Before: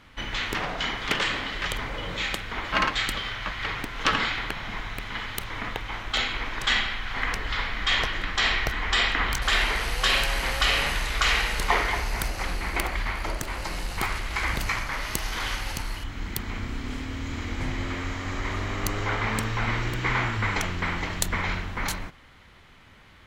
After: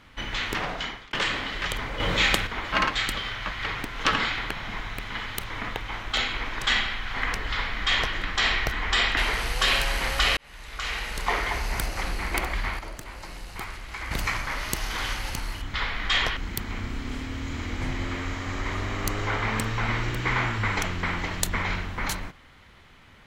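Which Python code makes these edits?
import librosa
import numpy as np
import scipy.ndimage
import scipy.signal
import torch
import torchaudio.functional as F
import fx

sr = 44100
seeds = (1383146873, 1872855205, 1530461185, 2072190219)

y = fx.edit(x, sr, fx.fade_out_span(start_s=0.7, length_s=0.43),
    fx.clip_gain(start_s=2.0, length_s=0.47, db=7.5),
    fx.duplicate(start_s=7.51, length_s=0.63, to_s=16.16),
    fx.cut(start_s=9.17, length_s=0.42),
    fx.fade_in_span(start_s=10.79, length_s=1.34),
    fx.clip_gain(start_s=13.21, length_s=1.32, db=-8.0), tone=tone)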